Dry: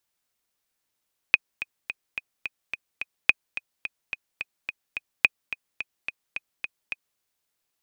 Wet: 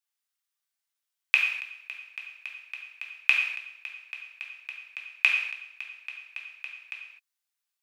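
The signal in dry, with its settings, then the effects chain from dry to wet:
click track 215 BPM, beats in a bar 7, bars 3, 2,500 Hz, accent 14.5 dB −2 dBFS
high-pass filter 1,100 Hz 12 dB per octave
output level in coarse steps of 18 dB
reverb whose tail is shaped and stops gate 280 ms falling, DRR −1.5 dB

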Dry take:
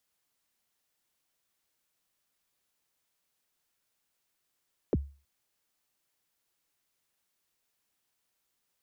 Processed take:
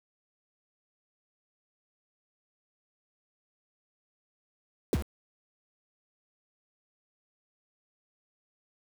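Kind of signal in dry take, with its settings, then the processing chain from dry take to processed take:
synth kick length 0.32 s, from 540 Hz, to 70 Hz, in 33 ms, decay 0.35 s, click off, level −20 dB
bit-depth reduction 6 bits, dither none

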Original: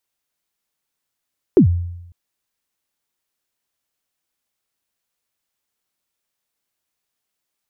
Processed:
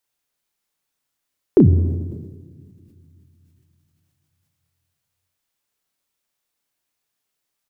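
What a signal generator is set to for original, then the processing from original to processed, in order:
synth kick length 0.55 s, from 430 Hz, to 87 Hz, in 99 ms, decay 0.88 s, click off, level −4.5 dB
double-tracking delay 32 ms −6 dB
rectangular room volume 3,500 cubic metres, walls mixed, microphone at 0.32 metres
level that may fall only so fast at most 42 dB per second

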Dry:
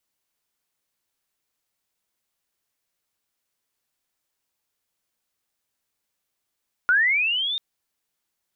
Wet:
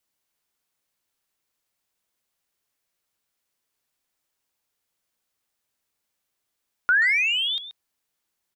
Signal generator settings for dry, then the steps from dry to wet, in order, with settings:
glide linear 1,400 Hz → 3,700 Hz −14.5 dBFS → −24 dBFS 0.69 s
far-end echo of a speakerphone 130 ms, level −9 dB

